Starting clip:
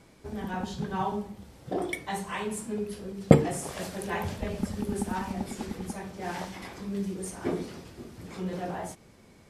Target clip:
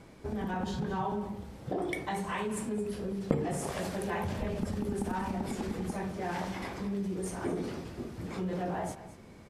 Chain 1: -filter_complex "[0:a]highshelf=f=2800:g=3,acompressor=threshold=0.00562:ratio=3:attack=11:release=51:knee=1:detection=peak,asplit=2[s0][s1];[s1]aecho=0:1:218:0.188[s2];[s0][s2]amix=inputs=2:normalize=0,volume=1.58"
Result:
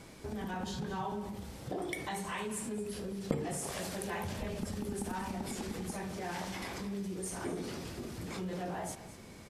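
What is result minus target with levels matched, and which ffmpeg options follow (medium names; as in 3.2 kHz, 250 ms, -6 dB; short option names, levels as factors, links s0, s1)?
4 kHz band +5.5 dB; compression: peak gain reduction +5 dB
-filter_complex "[0:a]highshelf=f=2800:g=-7,acompressor=threshold=0.0126:ratio=3:attack=11:release=51:knee=1:detection=peak,asplit=2[s0][s1];[s1]aecho=0:1:218:0.188[s2];[s0][s2]amix=inputs=2:normalize=0,volume=1.58"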